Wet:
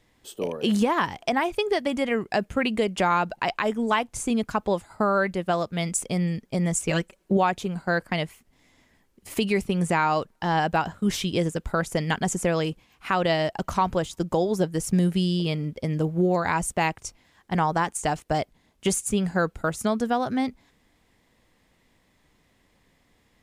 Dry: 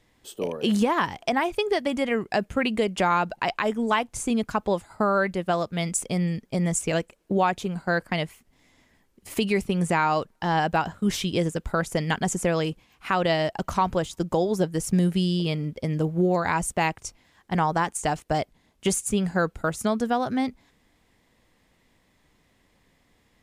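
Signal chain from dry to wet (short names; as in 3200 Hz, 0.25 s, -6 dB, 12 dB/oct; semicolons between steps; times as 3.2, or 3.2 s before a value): 6.88–7.37 comb 5.3 ms, depth 60%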